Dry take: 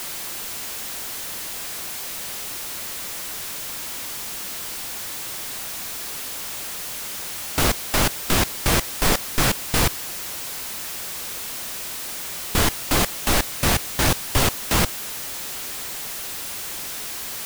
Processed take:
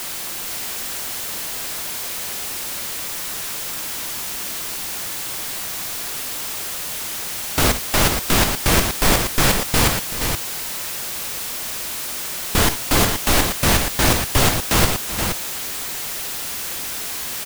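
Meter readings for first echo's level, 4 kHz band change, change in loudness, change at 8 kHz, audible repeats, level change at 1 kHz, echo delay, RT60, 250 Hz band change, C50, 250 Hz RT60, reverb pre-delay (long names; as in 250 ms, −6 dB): −12.5 dB, +4.0 dB, +4.0 dB, +4.0 dB, 3, +4.0 dB, 54 ms, no reverb audible, +4.0 dB, no reverb audible, no reverb audible, no reverb audible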